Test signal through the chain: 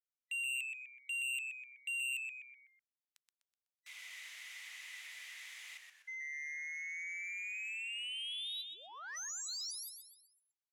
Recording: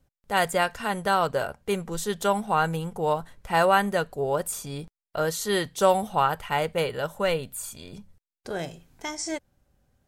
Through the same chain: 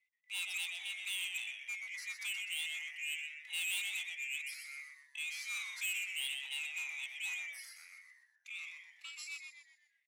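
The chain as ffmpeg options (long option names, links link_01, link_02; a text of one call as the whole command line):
ffmpeg -i in.wav -filter_complex "[0:a]afftfilt=real='real(if(lt(b,920),b+92*(1-2*mod(floor(b/92),2)),b),0)':imag='imag(if(lt(b,920),b+92*(1-2*mod(floor(b/92),2)),b),0)':win_size=2048:overlap=0.75,lowpass=2200,aderivative,asplit=6[link_01][link_02][link_03][link_04][link_05][link_06];[link_02]adelay=125,afreqshift=-130,volume=-6dB[link_07];[link_03]adelay=250,afreqshift=-260,volume=-13.1dB[link_08];[link_04]adelay=375,afreqshift=-390,volume=-20.3dB[link_09];[link_05]adelay=500,afreqshift=-520,volume=-27.4dB[link_10];[link_06]adelay=625,afreqshift=-650,volume=-34.5dB[link_11];[link_01][link_07][link_08][link_09][link_10][link_11]amix=inputs=6:normalize=0,asoftclip=type=tanh:threshold=-34dB,highpass=710,crystalizer=i=4:c=0,volume=-6dB" out.wav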